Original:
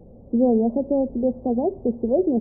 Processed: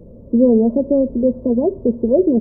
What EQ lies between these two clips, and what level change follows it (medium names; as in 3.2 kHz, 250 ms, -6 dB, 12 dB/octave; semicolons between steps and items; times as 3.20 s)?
Butterworth band-stop 770 Hz, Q 3.7; +6.0 dB